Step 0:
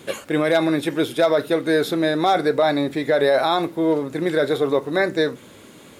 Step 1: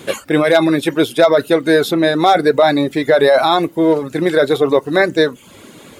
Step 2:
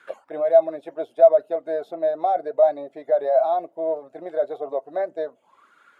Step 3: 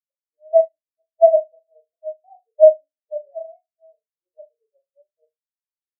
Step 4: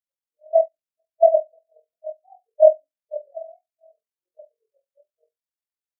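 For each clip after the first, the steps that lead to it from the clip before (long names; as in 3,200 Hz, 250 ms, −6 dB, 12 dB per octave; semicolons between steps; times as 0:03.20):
reverb reduction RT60 0.51 s; level +7 dB
high-shelf EQ 6,100 Hz +10 dB; envelope filter 660–1,600 Hz, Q 9.5, down, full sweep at −16.5 dBFS
running median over 41 samples; flutter between parallel walls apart 6.6 metres, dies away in 0.63 s; every bin expanded away from the loudest bin 4 to 1; level +7 dB
amplitude modulation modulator 43 Hz, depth 45%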